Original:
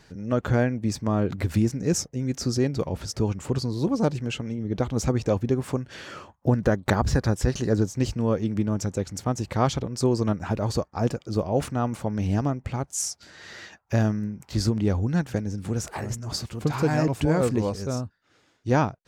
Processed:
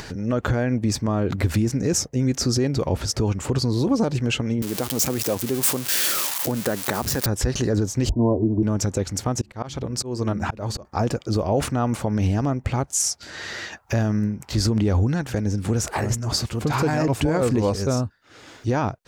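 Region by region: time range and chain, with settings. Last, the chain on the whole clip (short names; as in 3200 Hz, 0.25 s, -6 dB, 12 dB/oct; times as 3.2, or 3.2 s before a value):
4.62–7.26 switching spikes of -19.5 dBFS + HPF 160 Hz
8.09–8.63 steep low-pass 1000 Hz 96 dB/oct + comb 3 ms, depth 79%
9.41–10.85 de-hum 70.85 Hz, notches 5 + auto swell 0.416 s
whole clip: limiter -19.5 dBFS; bell 170 Hz -4.5 dB 0.45 oct; upward compressor, threshold -36 dBFS; gain +8 dB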